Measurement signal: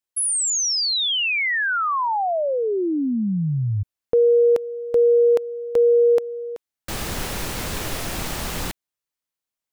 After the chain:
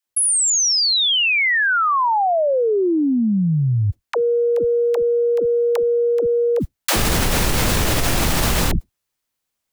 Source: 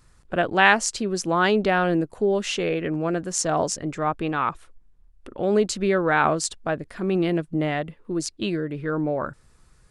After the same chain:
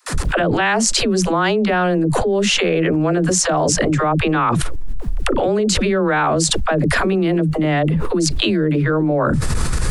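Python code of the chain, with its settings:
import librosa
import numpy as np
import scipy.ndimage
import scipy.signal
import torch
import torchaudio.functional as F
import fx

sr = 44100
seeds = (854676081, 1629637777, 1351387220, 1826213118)

y = fx.gate_hold(x, sr, open_db=-47.0, close_db=-48.0, hold_ms=54.0, range_db=-32, attack_ms=0.72, release_ms=47.0)
y = fx.low_shelf(y, sr, hz=190.0, db=4.0)
y = fx.rider(y, sr, range_db=4, speed_s=2.0)
y = fx.dispersion(y, sr, late='lows', ms=84.0, hz=330.0)
y = fx.env_flatten(y, sr, amount_pct=100)
y = y * librosa.db_to_amplitude(-3.0)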